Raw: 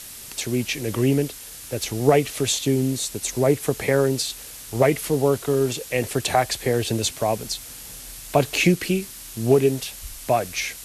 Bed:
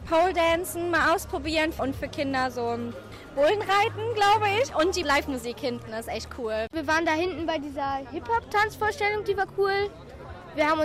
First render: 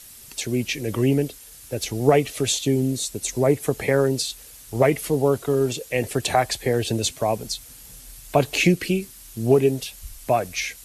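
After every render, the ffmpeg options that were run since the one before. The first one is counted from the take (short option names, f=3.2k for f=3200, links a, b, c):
-af "afftdn=nr=8:nf=-39"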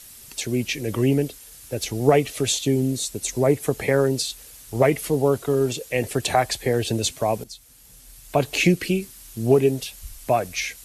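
-filter_complex "[0:a]asplit=2[a][b];[a]atrim=end=7.44,asetpts=PTS-STARTPTS,afade=t=out:st=7.436:d=0.004:c=hsin:silence=0.237137[c];[b]atrim=start=7.44,asetpts=PTS-STARTPTS,afade=t=in:d=1.26:silence=0.237137[d];[c][d]concat=n=2:v=0:a=1"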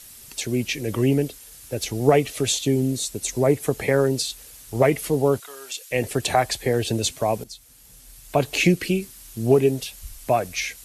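-filter_complex "[0:a]asplit=3[a][b][c];[a]afade=t=out:st=5.39:d=0.02[d];[b]highpass=1.5k,afade=t=in:st=5.39:d=0.02,afade=t=out:st=5.9:d=0.02[e];[c]afade=t=in:st=5.9:d=0.02[f];[d][e][f]amix=inputs=3:normalize=0"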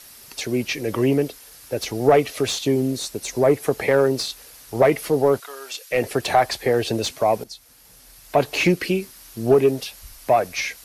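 -filter_complex "[0:a]aexciter=amount=1.3:drive=7.5:freq=4.4k,asplit=2[a][b];[b]highpass=f=720:p=1,volume=14dB,asoftclip=type=tanh:threshold=-3.5dB[c];[a][c]amix=inputs=2:normalize=0,lowpass=f=1.3k:p=1,volume=-6dB"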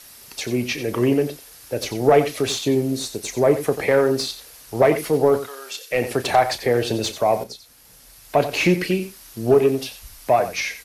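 -filter_complex "[0:a]asplit=2[a][b];[b]adelay=33,volume=-13dB[c];[a][c]amix=inputs=2:normalize=0,aecho=1:1:90:0.251"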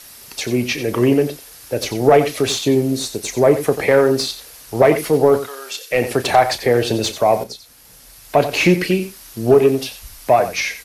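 -af "volume=4dB,alimiter=limit=-2dB:level=0:latency=1"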